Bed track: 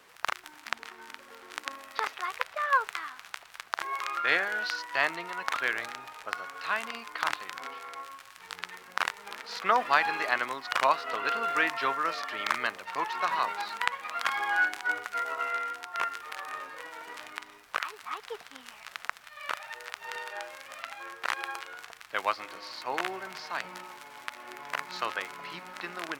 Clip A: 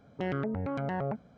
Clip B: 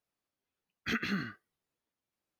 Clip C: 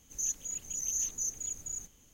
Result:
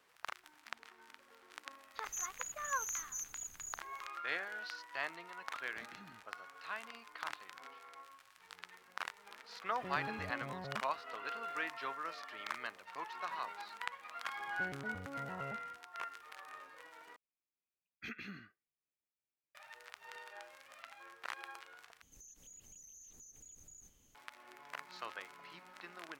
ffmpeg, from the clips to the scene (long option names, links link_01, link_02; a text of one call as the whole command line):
ffmpeg -i bed.wav -i cue0.wav -i cue1.wav -i cue2.wav -filter_complex "[3:a]asplit=2[link_01][link_02];[2:a]asplit=2[link_03][link_04];[1:a]asplit=2[link_05][link_06];[0:a]volume=-13dB[link_07];[link_01]equalizer=frequency=15000:width=0.41:gain=10[link_08];[link_03]acompressor=threshold=-34dB:ratio=6:attack=3.2:release=140:knee=1:detection=peak[link_09];[link_04]equalizer=frequency=2400:width_type=o:width=0.32:gain=10[link_10];[link_02]acompressor=threshold=-45dB:ratio=20:attack=0.69:release=86:knee=6:detection=peak[link_11];[link_07]asplit=3[link_12][link_13][link_14];[link_12]atrim=end=17.164[link_15];[link_10]atrim=end=2.39,asetpts=PTS-STARTPTS,volume=-15.5dB[link_16];[link_13]atrim=start=19.546:end=22.024[link_17];[link_11]atrim=end=2.13,asetpts=PTS-STARTPTS,volume=-7dB[link_18];[link_14]atrim=start=24.146[link_19];[link_08]atrim=end=2.13,asetpts=PTS-STARTPTS,volume=-12dB,afade=type=in:duration=0.004:curve=hsin,afade=type=out:start_time=2.126:duration=0.004:curve=hsin,adelay=1940[link_20];[link_09]atrim=end=2.39,asetpts=PTS-STARTPTS,volume=-18dB,afade=type=in:duration=0.004:curve=hsin,afade=type=out:start_time=2.386:duration=0.004:curve=hsin,adelay=215649S[link_21];[link_05]atrim=end=1.37,asetpts=PTS-STARTPTS,volume=-13.5dB,afade=type=in:duration=0.004:curve=hsin,afade=type=out:start_time=1.366:duration=0.004:curve=hsin,adelay=9640[link_22];[link_06]atrim=end=1.37,asetpts=PTS-STARTPTS,volume=-14.5dB,afade=type=in:duration=0.004:curve=hsin,afade=type=out:start_time=1.366:duration=0.004:curve=hsin,adelay=14400[link_23];[link_15][link_16]acrossfade=duration=0.004:curve1=hsin:curve2=hsin[link_24];[link_24][link_17]acrossfade=duration=0.004:curve1=hsin:curve2=hsin[link_25];[link_25][link_18]acrossfade=duration=0.004:curve1=hsin:curve2=hsin[link_26];[link_26][link_19]acrossfade=duration=0.004:curve1=hsin:curve2=hsin[link_27];[link_27][link_20][link_21][link_22][link_23]amix=inputs=5:normalize=0" out.wav